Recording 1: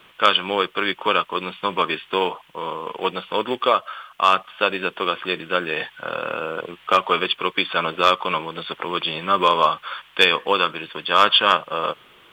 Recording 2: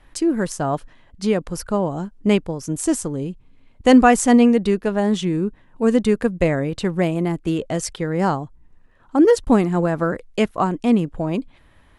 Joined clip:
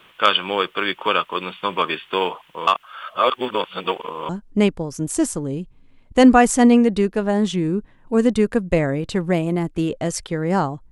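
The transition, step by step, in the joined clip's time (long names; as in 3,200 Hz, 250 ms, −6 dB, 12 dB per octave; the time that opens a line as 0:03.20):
recording 1
0:02.67–0:04.29: reverse
0:04.29: continue with recording 2 from 0:01.98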